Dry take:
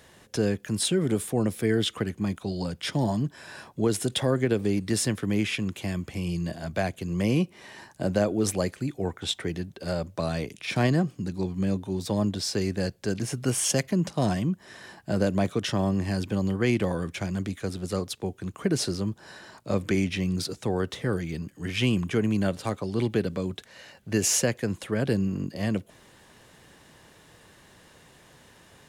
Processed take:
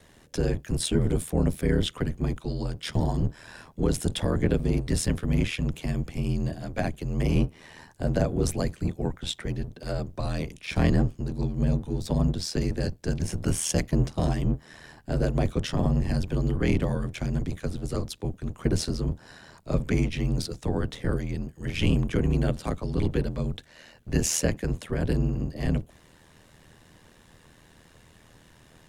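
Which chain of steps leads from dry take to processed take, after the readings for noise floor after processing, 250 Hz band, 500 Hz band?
−56 dBFS, −1.5 dB, −2.5 dB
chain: sub-octave generator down 1 octave, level +4 dB
ring modulation 40 Hz

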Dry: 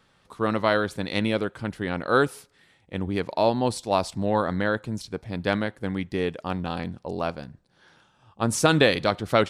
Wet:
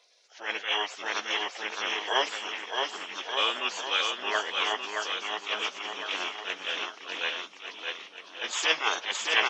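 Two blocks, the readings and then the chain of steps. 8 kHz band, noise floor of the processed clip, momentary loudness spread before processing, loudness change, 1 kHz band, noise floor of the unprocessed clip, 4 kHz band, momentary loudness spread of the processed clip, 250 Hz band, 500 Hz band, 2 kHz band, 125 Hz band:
−1.0 dB, −51 dBFS, 12 LU, −4.0 dB, −4.0 dB, −64 dBFS, +6.0 dB, 10 LU, −21.0 dB, −12.0 dB, +1.0 dB, below −35 dB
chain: hearing-aid frequency compression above 2,200 Hz 1.5 to 1
high-pass filter 760 Hz 24 dB per octave
in parallel at +1 dB: brickwall limiter −17.5 dBFS, peak gain reduction 9 dB
on the sum: gate on every frequency bin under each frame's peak −15 dB weak
on a send: bouncing-ball delay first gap 620 ms, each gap 0.9×, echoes 5
on the sum: level that may rise only so fast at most 170 dB per second
level +7 dB

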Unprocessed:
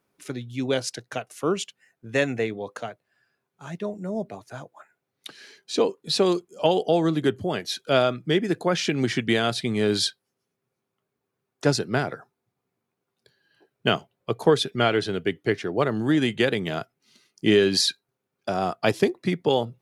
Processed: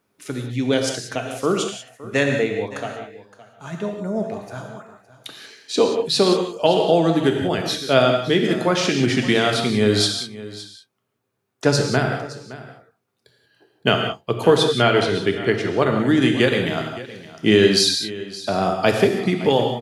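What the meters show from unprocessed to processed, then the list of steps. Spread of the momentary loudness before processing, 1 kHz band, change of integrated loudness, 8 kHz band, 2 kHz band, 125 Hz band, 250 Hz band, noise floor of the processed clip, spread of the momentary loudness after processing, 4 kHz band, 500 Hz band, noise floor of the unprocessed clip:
14 LU, +5.0 dB, +5.0 dB, +5.5 dB, +5.5 dB, +5.5 dB, +5.0 dB, −73 dBFS, 17 LU, +5.5 dB, +5.0 dB, −82 dBFS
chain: on a send: single-tap delay 566 ms −17 dB
on the sum: reverb whose tail is shaped and stops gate 210 ms flat, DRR 3 dB
level +3.5 dB

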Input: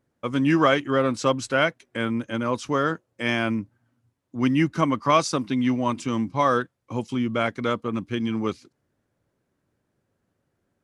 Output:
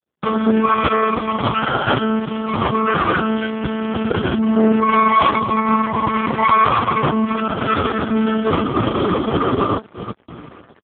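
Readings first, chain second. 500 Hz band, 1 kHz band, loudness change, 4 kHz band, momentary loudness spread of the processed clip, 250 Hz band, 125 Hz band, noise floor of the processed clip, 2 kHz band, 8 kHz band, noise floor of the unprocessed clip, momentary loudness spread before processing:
+5.5 dB, +11.0 dB, +6.5 dB, +5.5 dB, 8 LU, +6.5 dB, +5.5 dB, −47 dBFS, +5.5 dB, below −40 dB, −76 dBFS, 9 LU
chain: peak hold with a decay on every bin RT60 2.76 s
phaser with its sweep stopped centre 560 Hz, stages 6
downward compressor 2 to 1, threshold −41 dBFS, peak gain reduction 15 dB
dynamic equaliser 1,100 Hz, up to −3 dB, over −45 dBFS, Q 0.75
hum removal 89.77 Hz, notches 32
on a send: single-tap delay 875 ms −11 dB
on the sum: one-pitch LPC vocoder at 8 kHz 220 Hz
gate pattern ".xx.xxxxxx.x.xxx" 89 BPM −12 dB
leveller curve on the samples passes 5
noise gate −33 dBFS, range −12 dB
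boost into a limiter +29 dB
level −7 dB
AMR narrowband 4.75 kbit/s 8,000 Hz

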